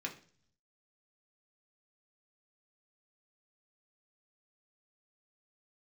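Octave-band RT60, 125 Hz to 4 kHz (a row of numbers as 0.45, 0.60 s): 1.0, 0.70, 0.50, 0.40, 0.45, 0.60 s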